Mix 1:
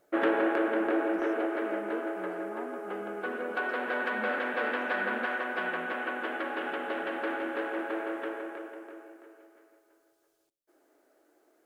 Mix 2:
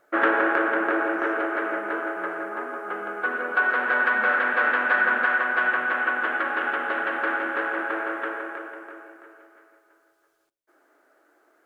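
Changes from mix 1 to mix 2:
speech -4.0 dB; master: add bell 1400 Hz +12.5 dB 1.4 oct

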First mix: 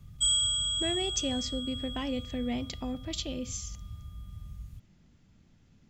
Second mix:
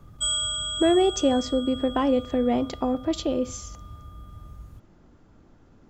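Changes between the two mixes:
speech: add low shelf 91 Hz +9.5 dB; master: add band shelf 650 Hz +14 dB 2.8 oct

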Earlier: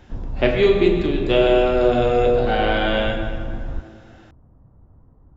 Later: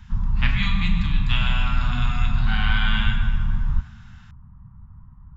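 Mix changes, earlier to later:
background +7.0 dB; master: add Chebyshev band-stop 200–1000 Hz, order 3

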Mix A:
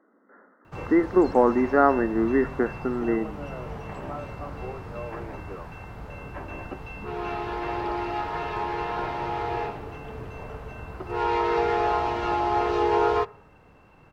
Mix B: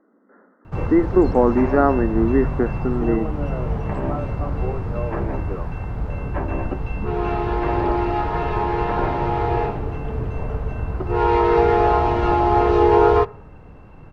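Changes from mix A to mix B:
first sound +5.5 dB; second sound +9.5 dB; master: add tilt -2.5 dB/oct

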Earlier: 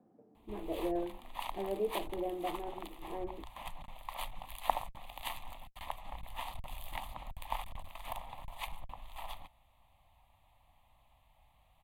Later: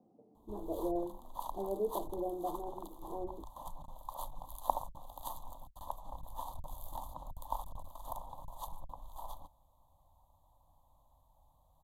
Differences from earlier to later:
background: add ripple EQ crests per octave 1.1, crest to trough 6 dB; master: add Chebyshev band-stop 910–5300 Hz, order 2

